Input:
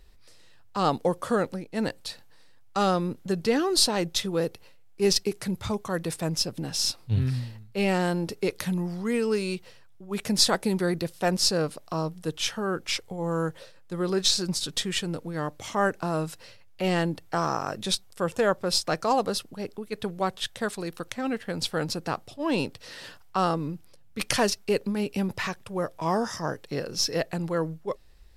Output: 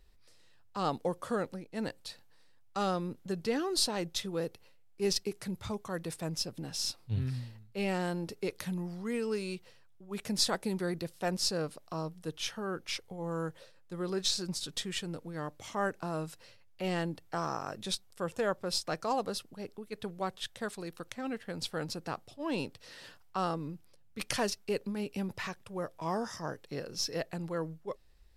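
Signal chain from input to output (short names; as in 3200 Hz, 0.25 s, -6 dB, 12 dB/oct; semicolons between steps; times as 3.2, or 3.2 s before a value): 12.28–13.31 notch 7600 Hz, Q 8.9; gain -8 dB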